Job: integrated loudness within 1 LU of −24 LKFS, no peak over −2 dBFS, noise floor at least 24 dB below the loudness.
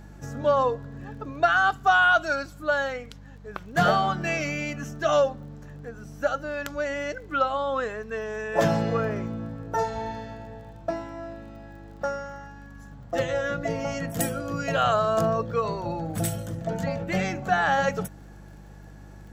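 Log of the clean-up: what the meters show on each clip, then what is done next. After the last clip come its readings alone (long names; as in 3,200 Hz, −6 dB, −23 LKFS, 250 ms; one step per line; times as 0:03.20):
crackle rate 28 per second; mains hum 50 Hz; hum harmonics up to 200 Hz; level of the hum −43 dBFS; integrated loudness −26.0 LKFS; sample peak −8.5 dBFS; target loudness −24.0 LKFS
→ click removal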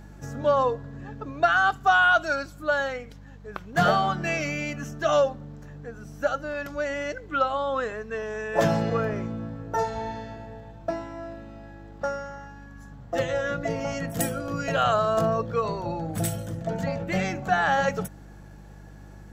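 crackle rate 0.16 per second; mains hum 50 Hz; hum harmonics up to 200 Hz; level of the hum −43 dBFS
→ hum removal 50 Hz, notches 4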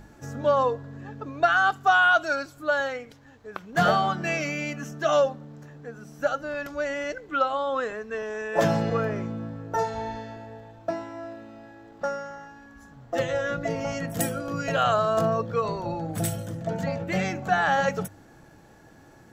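mains hum none found; integrated loudness −26.0 LKFS; sample peak −8.5 dBFS; target loudness −24.0 LKFS
→ level +2 dB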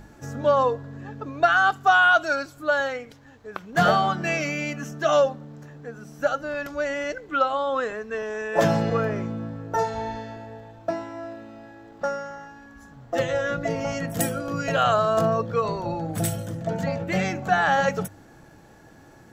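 integrated loudness −24.0 LKFS; sample peak −6.5 dBFS; background noise floor −50 dBFS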